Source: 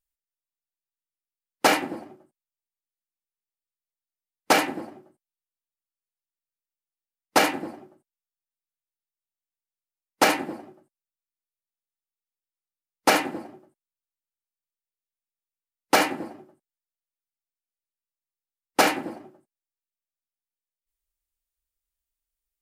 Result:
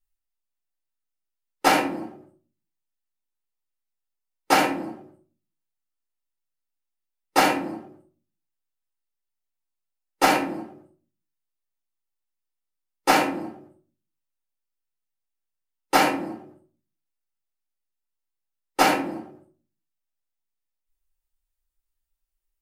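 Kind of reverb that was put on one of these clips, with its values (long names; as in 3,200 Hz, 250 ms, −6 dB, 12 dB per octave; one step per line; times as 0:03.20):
rectangular room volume 220 cubic metres, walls furnished, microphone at 4.3 metres
level −7.5 dB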